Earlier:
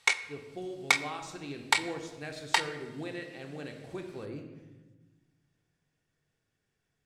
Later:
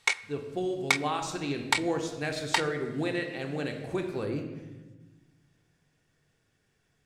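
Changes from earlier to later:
speech +8.5 dB; background: send -6.0 dB

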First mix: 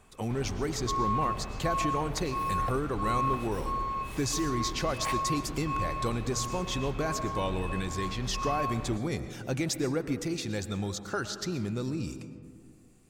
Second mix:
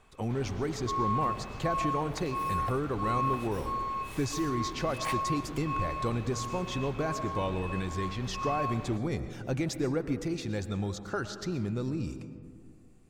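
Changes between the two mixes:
speech: add tilt -2.5 dB/oct; master: add low shelf 370 Hz -7.5 dB

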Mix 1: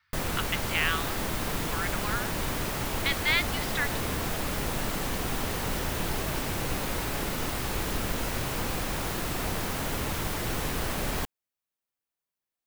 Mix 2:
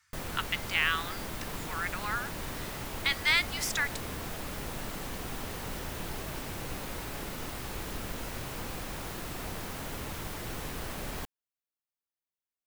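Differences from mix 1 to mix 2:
speech: remove steep low-pass 4500 Hz; background -7.5 dB

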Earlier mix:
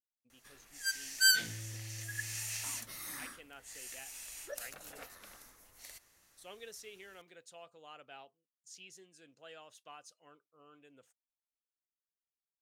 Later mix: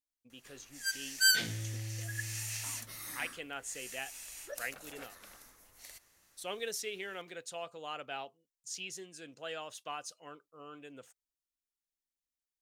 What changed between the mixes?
speech +11.0 dB; second sound +6.0 dB

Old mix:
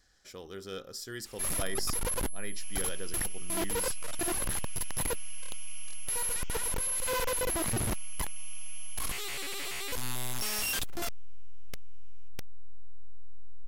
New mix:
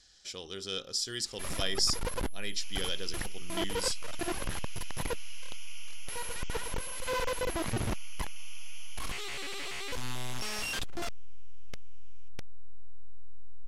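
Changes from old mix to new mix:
speech: add band shelf 5400 Hz +13 dB 2.4 oct; second sound: add tilt +3 dB/oct; master: add air absorption 57 m

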